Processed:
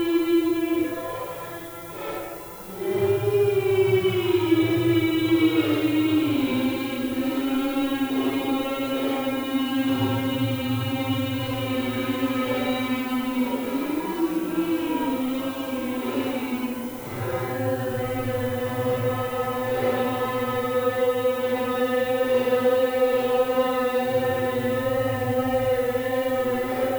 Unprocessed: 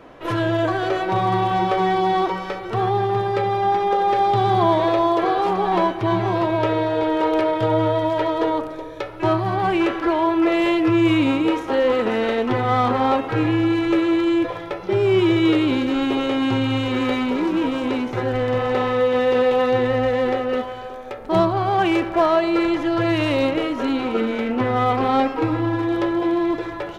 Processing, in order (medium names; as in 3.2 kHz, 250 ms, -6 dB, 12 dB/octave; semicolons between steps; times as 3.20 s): Paulstretch 4.4×, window 0.10 s, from 14.24 s; added noise violet -39 dBFS; trim -4.5 dB